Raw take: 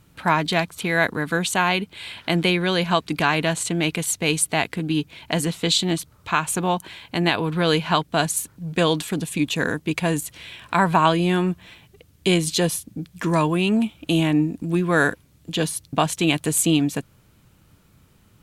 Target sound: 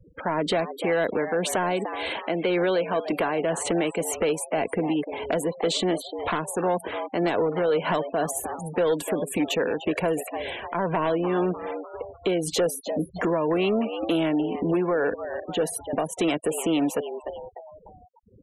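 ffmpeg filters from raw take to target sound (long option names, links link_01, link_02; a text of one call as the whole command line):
ffmpeg -i in.wav -filter_complex "[0:a]asoftclip=type=tanh:threshold=-10.5dB,tremolo=f=1.9:d=0.68,equalizer=frequency=125:width_type=o:width=1:gain=-9,equalizer=frequency=500:width_type=o:width=1:gain=12,equalizer=frequency=4000:width_type=o:width=1:gain=-8,equalizer=frequency=8000:width_type=o:width=1:gain=-4,acrossover=split=120|530|4400[link_01][link_02][link_03][link_04];[link_01]acompressor=threshold=-52dB:ratio=4[link_05];[link_02]acompressor=threshold=-29dB:ratio=4[link_06];[link_03]acompressor=threshold=-30dB:ratio=4[link_07];[link_04]acompressor=threshold=-38dB:ratio=4[link_08];[link_05][link_06][link_07][link_08]amix=inputs=4:normalize=0,asettb=1/sr,asplit=3[link_09][link_10][link_11];[link_09]atrim=end=2.114[link_12];[link_10]atrim=start=2.11:end=3.39,asetpts=PTS-STARTPTS,afade=type=in:duration=0.004:curve=qsin,afade=type=out:start_time=1.276:duration=0.004:curve=qsin,lowshelf=frequency=94:gain=-11[link_13];[link_11]atrim=start=3.386[link_14];[link_12][link_13]acrossfade=duration=0.004:curve1=hsin:curve2=qsin[link_15];[link_15][link_14]acrossfade=duration=0.004:curve1=qsin:curve2=hsin,asplit=5[link_16][link_17][link_18][link_19][link_20];[link_17]adelay=299,afreqshift=110,volume=-14dB[link_21];[link_18]adelay=598,afreqshift=220,volume=-20.9dB[link_22];[link_19]adelay=897,afreqshift=330,volume=-27.9dB[link_23];[link_20]adelay=1196,afreqshift=440,volume=-34.8dB[link_24];[link_16][link_21][link_22][link_23][link_24]amix=inputs=5:normalize=0,aeval=exprs='0.237*sin(PI/2*1.78*val(0)/0.237)':channel_layout=same,alimiter=limit=-17dB:level=0:latency=1:release=220,afftfilt=real='re*gte(hypot(re,im),0.0178)':imag='im*gte(hypot(re,im),0.0178)':win_size=1024:overlap=0.75,bandreject=frequency=2500:width=19" out.wav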